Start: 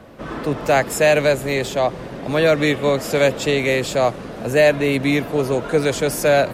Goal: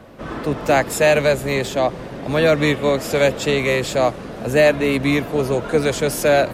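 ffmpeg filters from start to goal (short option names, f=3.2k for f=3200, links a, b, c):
-filter_complex "[0:a]asplit=2[a][b];[b]asetrate=22050,aresample=44100,atempo=2,volume=-13dB[c];[a][c]amix=inputs=2:normalize=0"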